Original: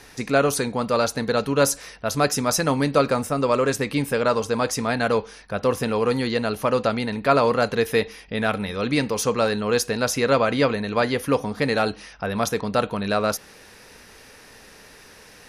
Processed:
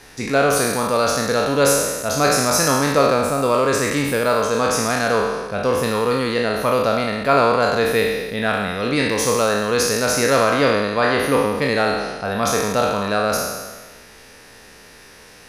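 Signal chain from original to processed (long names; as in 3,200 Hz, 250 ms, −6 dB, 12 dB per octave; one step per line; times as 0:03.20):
peak hold with a decay on every bin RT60 1.38 s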